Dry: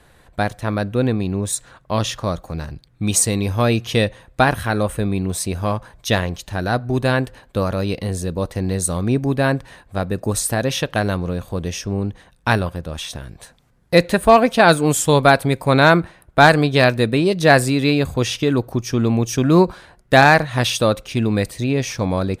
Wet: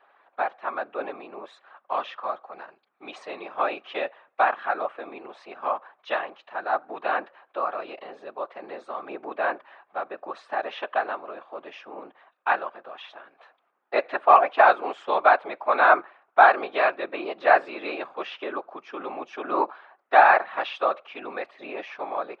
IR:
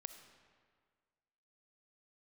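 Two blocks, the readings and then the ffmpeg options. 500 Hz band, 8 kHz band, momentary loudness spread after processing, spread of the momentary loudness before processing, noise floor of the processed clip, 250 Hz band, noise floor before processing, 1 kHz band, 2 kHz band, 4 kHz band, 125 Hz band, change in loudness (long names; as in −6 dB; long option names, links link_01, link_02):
−8.5 dB, below −40 dB, 22 LU, 12 LU, −70 dBFS, −21.5 dB, −54 dBFS, −1.5 dB, −6.0 dB, −16.5 dB, below −40 dB, −6.0 dB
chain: -af "afftfilt=real='hypot(re,im)*cos(2*PI*random(0))':imag='hypot(re,im)*sin(2*PI*random(1))':win_size=512:overlap=0.75,highpass=frequency=440:width=0.5412,highpass=frequency=440:width=1.3066,equalizer=frequency=470:width_type=q:width=4:gain=-7,equalizer=frequency=780:width_type=q:width=4:gain=5,equalizer=frequency=1200:width_type=q:width=4:gain=7,equalizer=frequency=2000:width_type=q:width=4:gain=-3,lowpass=frequency=2700:width=0.5412,lowpass=frequency=2700:width=1.3066"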